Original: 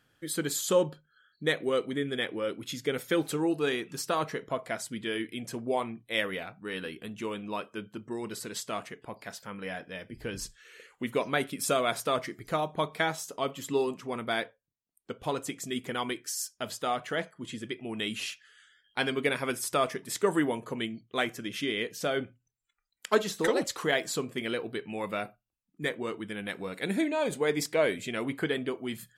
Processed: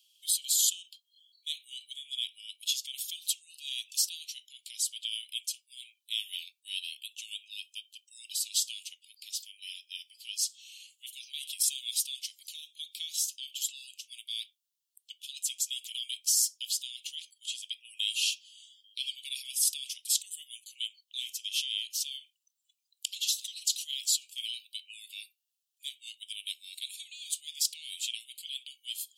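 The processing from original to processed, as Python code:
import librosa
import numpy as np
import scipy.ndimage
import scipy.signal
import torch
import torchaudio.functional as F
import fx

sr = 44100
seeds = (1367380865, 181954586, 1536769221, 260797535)

p1 = fx.over_compress(x, sr, threshold_db=-34.0, ratio=-0.5)
p2 = x + (p1 * 10.0 ** (2.0 / 20.0))
y = scipy.signal.sosfilt(scipy.signal.butter(12, 2800.0, 'highpass', fs=sr, output='sos'), p2)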